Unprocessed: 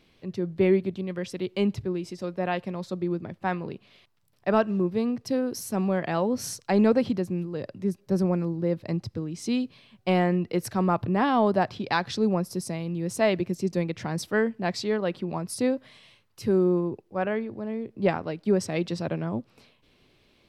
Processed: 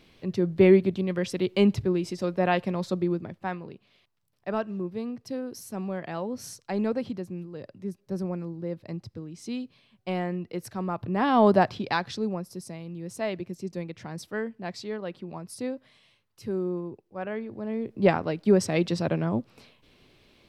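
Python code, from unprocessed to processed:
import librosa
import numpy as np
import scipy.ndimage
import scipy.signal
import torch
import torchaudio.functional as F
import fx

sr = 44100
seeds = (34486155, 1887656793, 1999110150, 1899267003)

y = fx.gain(x, sr, db=fx.line((2.92, 4.0), (3.68, -7.0), (10.96, -7.0), (11.49, 4.5), (12.42, -7.5), (17.17, -7.5), (17.88, 3.0)))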